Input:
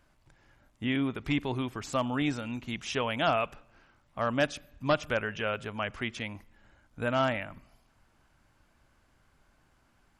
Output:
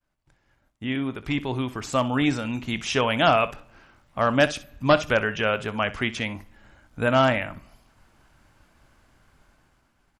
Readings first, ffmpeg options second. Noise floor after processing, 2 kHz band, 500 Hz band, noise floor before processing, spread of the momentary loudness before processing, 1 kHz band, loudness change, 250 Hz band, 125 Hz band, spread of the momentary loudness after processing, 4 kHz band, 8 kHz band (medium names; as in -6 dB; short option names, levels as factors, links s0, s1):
-69 dBFS, +7.5 dB, +8.0 dB, -68 dBFS, 9 LU, +8.0 dB, +7.5 dB, +6.0 dB, +7.0 dB, 10 LU, +7.5 dB, +7.5 dB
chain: -af "aecho=1:1:23|63:0.141|0.15,dynaudnorm=f=680:g=5:m=2.51,agate=range=0.0224:threshold=0.00141:ratio=3:detection=peak"